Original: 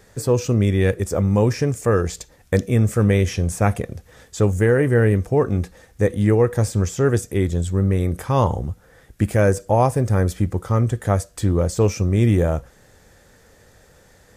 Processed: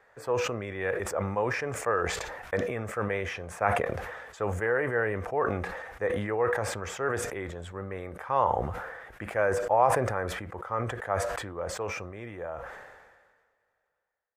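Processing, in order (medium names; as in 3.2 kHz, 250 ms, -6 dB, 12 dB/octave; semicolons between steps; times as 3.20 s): fade out at the end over 4.11 s; three-band isolator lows -23 dB, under 580 Hz, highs -24 dB, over 2.2 kHz; decay stretcher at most 38 dB/s; trim -1.5 dB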